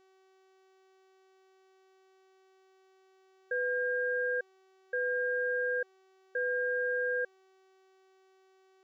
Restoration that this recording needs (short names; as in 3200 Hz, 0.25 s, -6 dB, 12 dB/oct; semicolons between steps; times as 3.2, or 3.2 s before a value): de-hum 379.9 Hz, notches 20